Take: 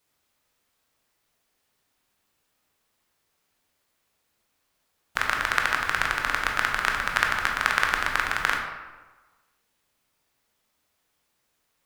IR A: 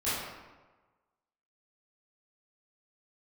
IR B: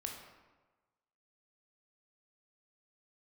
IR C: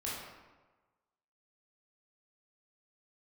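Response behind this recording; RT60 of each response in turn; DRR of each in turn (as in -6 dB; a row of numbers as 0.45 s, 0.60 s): B; 1.3 s, 1.3 s, 1.3 s; -13.5 dB, 1.0 dB, -7.0 dB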